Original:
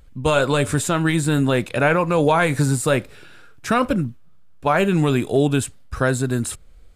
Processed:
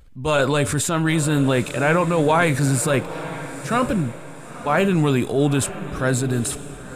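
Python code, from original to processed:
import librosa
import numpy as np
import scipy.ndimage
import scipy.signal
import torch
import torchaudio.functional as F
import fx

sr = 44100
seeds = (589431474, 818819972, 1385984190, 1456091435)

y = fx.transient(x, sr, attack_db=-6, sustain_db=4)
y = fx.echo_diffused(y, sr, ms=951, feedback_pct=41, wet_db=-13.0)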